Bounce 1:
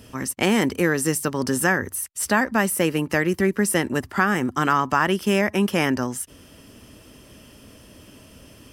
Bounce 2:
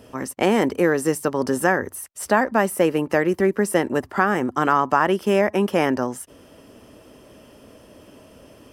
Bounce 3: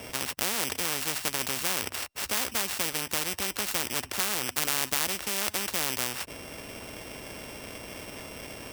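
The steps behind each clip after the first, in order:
peaking EQ 600 Hz +11.5 dB 2.5 oct; trim -6 dB
sorted samples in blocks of 16 samples; spectrum-flattening compressor 4:1; trim -3 dB

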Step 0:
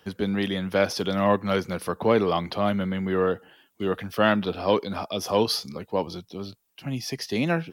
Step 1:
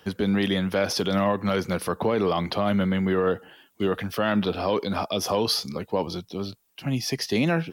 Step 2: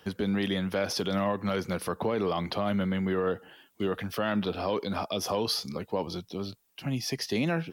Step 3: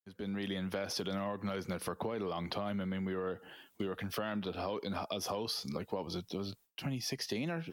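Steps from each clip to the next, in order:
peak limiter -18 dBFS, peak gain reduction 10 dB; trim +4 dB
in parallel at -3 dB: compression, threshold -30 dBFS, peak gain reduction 11 dB; on the sum: word length cut 12-bit, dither none; trim -7 dB
fade-in on the opening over 0.78 s; compression, threshold -34 dBFS, peak gain reduction 10 dB; gate with hold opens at -55 dBFS

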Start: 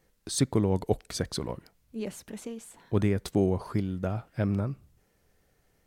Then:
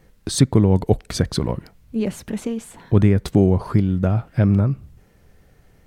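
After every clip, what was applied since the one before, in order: tone controls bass +6 dB, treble -5 dB; in parallel at +1.5 dB: compression, threshold -31 dBFS, peak gain reduction 15 dB; on the sum: trim +4.5 dB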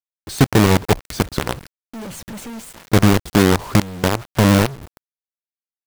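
companded quantiser 2-bit; trim -5.5 dB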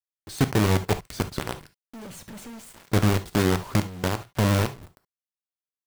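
reverberation, pre-delay 4 ms, DRR 10 dB; trim -8.5 dB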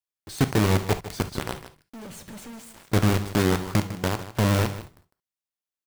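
delay 153 ms -13.5 dB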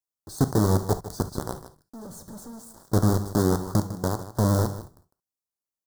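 Butterworth band-stop 2.5 kHz, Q 0.69

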